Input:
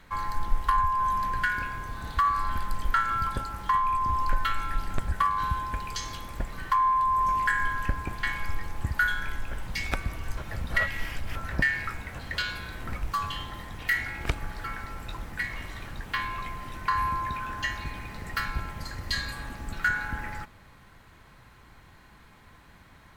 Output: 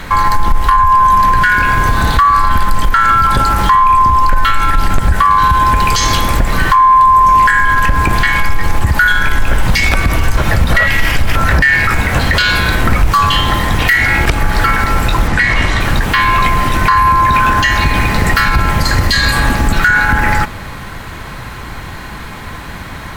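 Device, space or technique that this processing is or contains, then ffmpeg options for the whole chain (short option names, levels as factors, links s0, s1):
loud club master: -filter_complex "[0:a]acompressor=threshold=0.0316:ratio=2,asoftclip=type=hard:threshold=0.1,alimiter=level_in=25.1:limit=0.891:release=50:level=0:latency=1,asplit=3[s0][s1][s2];[s0]afade=t=out:st=15.27:d=0.02[s3];[s1]lowpass=7800,afade=t=in:st=15.27:d=0.02,afade=t=out:st=15.79:d=0.02[s4];[s2]afade=t=in:st=15.79:d=0.02[s5];[s3][s4][s5]amix=inputs=3:normalize=0,volume=0.891"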